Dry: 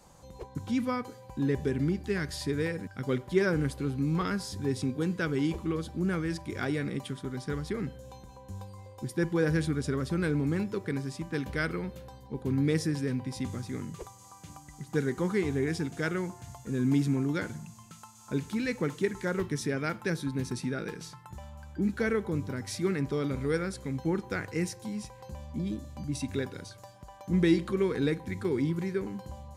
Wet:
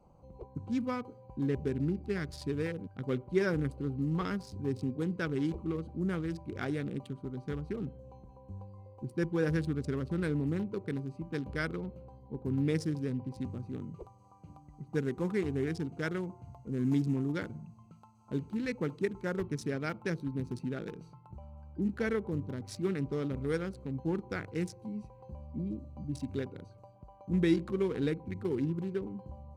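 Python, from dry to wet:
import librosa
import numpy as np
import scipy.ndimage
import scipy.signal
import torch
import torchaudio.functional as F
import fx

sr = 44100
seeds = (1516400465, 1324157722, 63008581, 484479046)

y = fx.wiener(x, sr, points=25)
y = y * librosa.db_to_amplitude(-3.0)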